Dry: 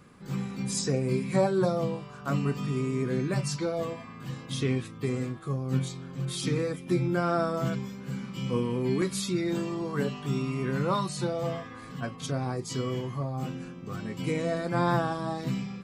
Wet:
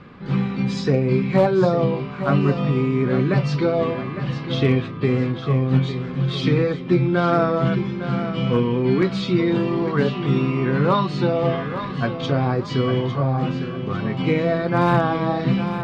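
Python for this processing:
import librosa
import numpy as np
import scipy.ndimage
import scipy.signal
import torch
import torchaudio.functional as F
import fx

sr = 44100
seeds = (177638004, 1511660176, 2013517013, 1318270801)

p1 = scipy.signal.sosfilt(scipy.signal.butter(4, 3900.0, 'lowpass', fs=sr, output='sos'), x)
p2 = fx.rider(p1, sr, range_db=3, speed_s=0.5)
p3 = p1 + F.gain(torch.from_numpy(p2), 1.0).numpy()
p4 = np.clip(p3, -10.0 ** (-11.5 / 20.0), 10.0 ** (-11.5 / 20.0))
p5 = fx.echo_feedback(p4, sr, ms=855, feedback_pct=36, wet_db=-10.5)
y = F.gain(torch.from_numpy(p5), 3.0).numpy()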